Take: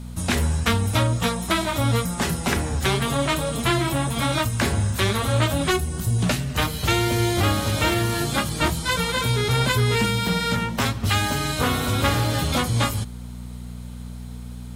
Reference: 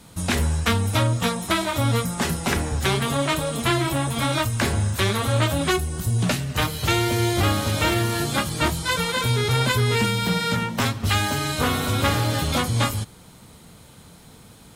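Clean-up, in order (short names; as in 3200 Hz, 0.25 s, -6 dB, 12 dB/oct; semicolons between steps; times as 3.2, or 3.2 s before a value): de-hum 60.5 Hz, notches 4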